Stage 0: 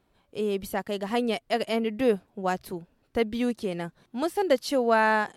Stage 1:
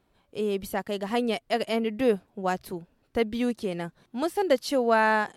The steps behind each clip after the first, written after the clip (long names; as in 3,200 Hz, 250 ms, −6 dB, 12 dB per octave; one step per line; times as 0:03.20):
no processing that can be heard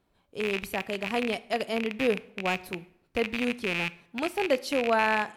loose part that buzzes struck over −38 dBFS, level −15 dBFS
dense smooth reverb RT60 0.71 s, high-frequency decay 0.75×, DRR 16 dB
level −3 dB